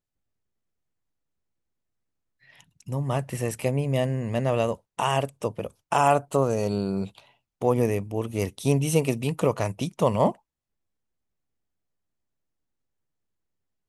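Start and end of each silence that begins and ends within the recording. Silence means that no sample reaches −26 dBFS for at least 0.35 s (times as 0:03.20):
0:07.05–0:07.62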